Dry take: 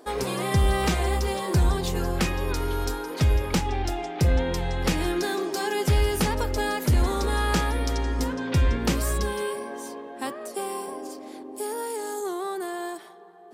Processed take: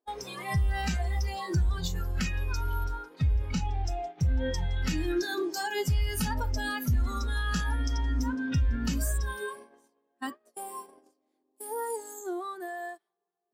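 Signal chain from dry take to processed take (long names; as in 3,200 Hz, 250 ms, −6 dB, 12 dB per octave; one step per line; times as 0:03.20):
brickwall limiter −19 dBFS, peak gain reduction 5.5 dB
0:02.83–0:03.68: high-shelf EQ 5,600 Hz → 11,000 Hz −8.5 dB
noise gate −33 dBFS, range −22 dB
noise reduction from a noise print of the clip's start 15 dB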